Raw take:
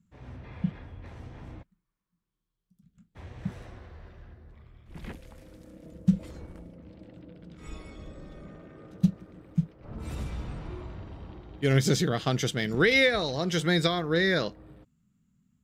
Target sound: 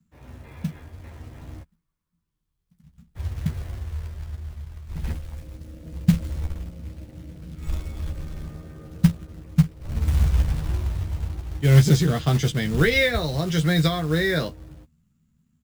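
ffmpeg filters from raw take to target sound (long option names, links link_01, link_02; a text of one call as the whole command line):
ffmpeg -i in.wav -filter_complex "[0:a]acrossover=split=120|410|3500[link_01][link_02][link_03][link_04];[link_01]dynaudnorm=framelen=650:gausssize=7:maxgain=16dB[link_05];[link_05][link_02][link_03][link_04]amix=inputs=4:normalize=0,acrusher=bits=5:mode=log:mix=0:aa=0.000001,asplit=2[link_06][link_07];[link_07]adelay=13,volume=-5.5dB[link_08];[link_06][link_08]amix=inputs=2:normalize=0" out.wav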